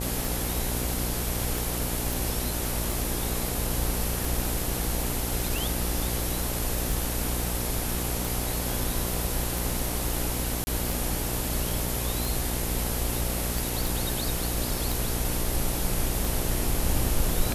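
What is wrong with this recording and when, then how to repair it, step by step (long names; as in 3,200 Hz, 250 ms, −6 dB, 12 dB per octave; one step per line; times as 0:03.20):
mains buzz 60 Hz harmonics 15 −32 dBFS
scratch tick 45 rpm
0:02.13: click
0:10.64–0:10.67: drop-out 30 ms
0:13.87: click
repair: click removal
hum removal 60 Hz, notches 15
repair the gap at 0:10.64, 30 ms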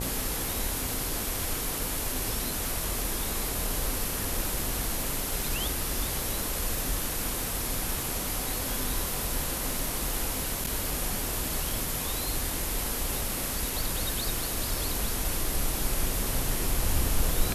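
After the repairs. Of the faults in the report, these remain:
none of them is left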